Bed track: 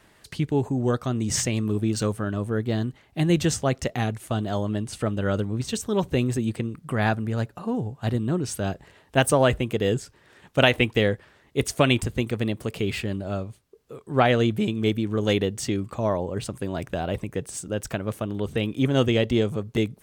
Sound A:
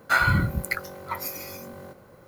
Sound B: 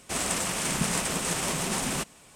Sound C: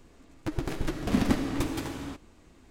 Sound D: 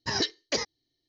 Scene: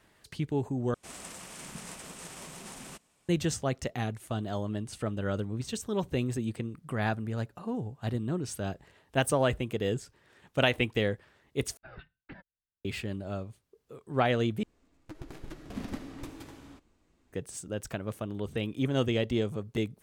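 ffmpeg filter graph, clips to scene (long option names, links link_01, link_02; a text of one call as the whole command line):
ffmpeg -i bed.wav -i cue0.wav -i cue1.wav -i cue2.wav -i cue3.wav -filter_complex "[0:a]volume=-7dB[link_01];[4:a]highpass=frequency=200:width_type=q:width=0.5412,highpass=frequency=200:width_type=q:width=1.307,lowpass=frequency=2800:width_type=q:width=0.5176,lowpass=frequency=2800:width_type=q:width=0.7071,lowpass=frequency=2800:width_type=q:width=1.932,afreqshift=-280[link_02];[link_01]asplit=4[link_03][link_04][link_05][link_06];[link_03]atrim=end=0.944[link_07];[2:a]atrim=end=2.35,asetpts=PTS-STARTPTS,volume=-16dB[link_08];[link_04]atrim=start=3.286:end=11.774[link_09];[link_02]atrim=end=1.08,asetpts=PTS-STARTPTS,volume=-16.5dB[link_10];[link_05]atrim=start=12.846:end=14.634[link_11];[3:a]atrim=end=2.7,asetpts=PTS-STARTPTS,volume=-13dB[link_12];[link_06]atrim=start=17.326[link_13];[link_07][link_08]acrossfade=duration=0.004:curve1=hsin:curve2=hsin[link_14];[link_14][link_09]acrossfade=duration=0.004:curve1=hsin:curve2=hsin[link_15];[link_15][link_10]acrossfade=duration=0.004:curve1=hsin:curve2=hsin[link_16];[link_16][link_11]acrossfade=duration=0.004:curve1=hsin:curve2=hsin[link_17];[link_17][link_12]acrossfade=duration=0.004:curve1=hsin:curve2=hsin[link_18];[link_18][link_13]acrossfade=duration=0.004:curve1=hsin:curve2=hsin" out.wav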